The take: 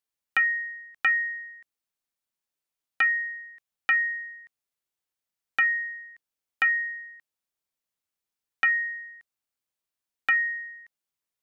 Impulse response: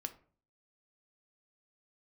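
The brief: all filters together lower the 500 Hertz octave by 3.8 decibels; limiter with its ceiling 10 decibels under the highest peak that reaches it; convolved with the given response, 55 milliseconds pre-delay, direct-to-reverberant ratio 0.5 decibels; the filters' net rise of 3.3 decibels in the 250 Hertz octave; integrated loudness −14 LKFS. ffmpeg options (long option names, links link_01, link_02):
-filter_complex "[0:a]equalizer=frequency=250:width_type=o:gain=6,equalizer=frequency=500:width_type=o:gain=-7,alimiter=level_in=1dB:limit=-24dB:level=0:latency=1,volume=-1dB,asplit=2[link_01][link_02];[1:a]atrim=start_sample=2205,adelay=55[link_03];[link_02][link_03]afir=irnorm=-1:irlink=0,volume=1.5dB[link_04];[link_01][link_04]amix=inputs=2:normalize=0,volume=12.5dB"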